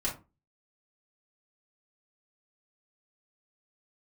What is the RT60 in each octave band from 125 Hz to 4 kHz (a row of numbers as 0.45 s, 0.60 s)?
0.40 s, 0.35 s, 0.30 s, 0.30 s, 0.20 s, 0.15 s